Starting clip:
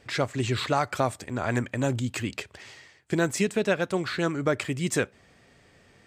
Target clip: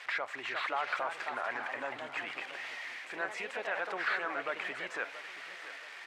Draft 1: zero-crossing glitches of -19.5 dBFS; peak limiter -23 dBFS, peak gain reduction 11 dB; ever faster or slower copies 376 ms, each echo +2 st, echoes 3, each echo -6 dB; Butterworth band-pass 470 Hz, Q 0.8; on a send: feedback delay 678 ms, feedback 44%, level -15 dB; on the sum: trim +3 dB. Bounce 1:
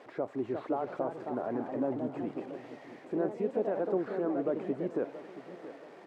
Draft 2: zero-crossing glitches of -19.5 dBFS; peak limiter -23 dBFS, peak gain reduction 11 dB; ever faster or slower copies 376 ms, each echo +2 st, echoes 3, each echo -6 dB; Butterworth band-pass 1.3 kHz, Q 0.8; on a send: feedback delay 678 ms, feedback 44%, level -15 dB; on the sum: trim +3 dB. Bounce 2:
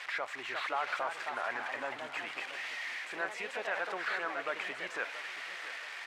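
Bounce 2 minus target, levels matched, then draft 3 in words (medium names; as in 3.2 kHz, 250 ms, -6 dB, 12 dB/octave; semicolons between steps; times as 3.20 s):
zero-crossing glitches: distortion +8 dB
zero-crossing glitches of -27.5 dBFS; peak limiter -23 dBFS, peak gain reduction 11 dB; ever faster or slower copies 376 ms, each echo +2 st, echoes 3, each echo -6 dB; Butterworth band-pass 1.3 kHz, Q 0.8; on a send: feedback delay 678 ms, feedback 44%, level -15 dB; on the sum: trim +3 dB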